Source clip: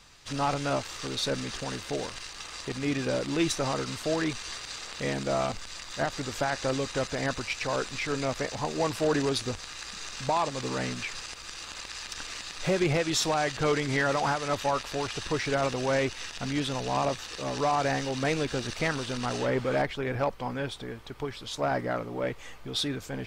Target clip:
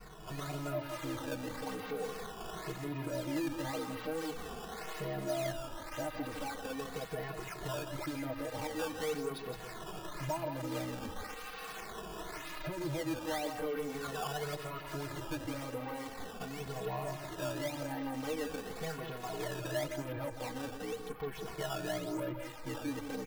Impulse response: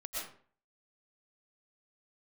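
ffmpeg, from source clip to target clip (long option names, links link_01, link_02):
-filter_complex "[0:a]acompressor=threshold=-35dB:ratio=6,equalizer=frequency=330:width=1.5:gain=4,acompressor=mode=upward:threshold=-43dB:ratio=2.5,lowpass=2600,bandreject=frequency=60:width_type=h:width=6,bandreject=frequency=120:width_type=h:width=6,aresample=16000,asoftclip=type=tanh:threshold=-40dB,aresample=44100,adynamicequalizer=threshold=0.00112:dfrequency=670:dqfactor=0.91:tfrequency=670:tqfactor=0.91:attack=5:release=100:ratio=0.375:range=2.5:mode=boostabove:tftype=bell,aecho=1:1:6.4:0.89,aecho=1:1:165:0.422,acrusher=samples=12:mix=1:aa=0.000001:lfo=1:lforange=19.2:lforate=0.93,asplit=2[link_01][link_02];[link_02]adelay=2.3,afreqshift=-0.42[link_03];[link_01][link_03]amix=inputs=2:normalize=1,volume=2dB"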